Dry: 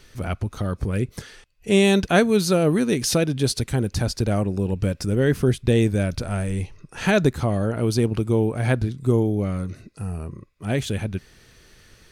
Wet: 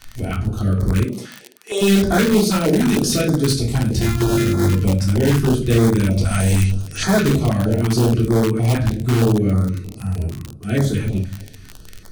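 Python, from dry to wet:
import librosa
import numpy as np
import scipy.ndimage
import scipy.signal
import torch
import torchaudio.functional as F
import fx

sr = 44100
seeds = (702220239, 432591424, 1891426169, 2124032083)

p1 = fx.sample_sort(x, sr, block=128, at=(3.99, 4.71), fade=0.02)
p2 = fx.peak_eq(p1, sr, hz=5800.0, db=15.0, octaves=2.4, at=(6.23, 7.03), fade=0.02)
p3 = p2 + fx.echo_feedback(p2, sr, ms=219, feedback_pct=58, wet_db=-22, dry=0)
p4 = fx.room_shoebox(p3, sr, seeds[0], volume_m3=350.0, walls='furnished', distance_m=3.4)
p5 = fx.dmg_crackle(p4, sr, seeds[1], per_s=36.0, level_db=-18.0)
p6 = fx.highpass(p5, sr, hz=fx.line((1.04, 140.0), (1.81, 520.0)), slope=24, at=(1.04, 1.81), fade=0.02)
p7 = (np.mod(10.0 ** (7.0 / 20.0) * p6 + 1.0, 2.0) - 1.0) / 10.0 ** (7.0 / 20.0)
p8 = p6 + (p7 * librosa.db_to_amplitude(-7.5))
p9 = fx.filter_held_notch(p8, sr, hz=6.4, low_hz=410.0, high_hz=2700.0)
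y = p9 * librosa.db_to_amplitude(-4.5)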